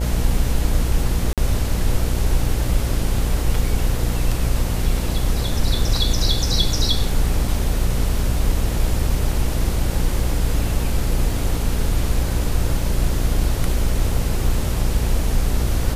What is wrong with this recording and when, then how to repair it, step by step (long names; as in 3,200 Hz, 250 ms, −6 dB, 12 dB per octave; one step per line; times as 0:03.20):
mains buzz 60 Hz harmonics 14 −23 dBFS
0:01.33–0:01.38: drop-out 47 ms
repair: hum removal 60 Hz, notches 14
repair the gap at 0:01.33, 47 ms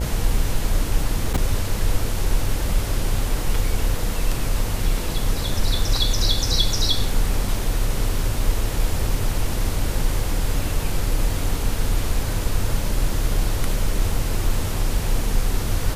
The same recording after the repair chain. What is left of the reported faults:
none of them is left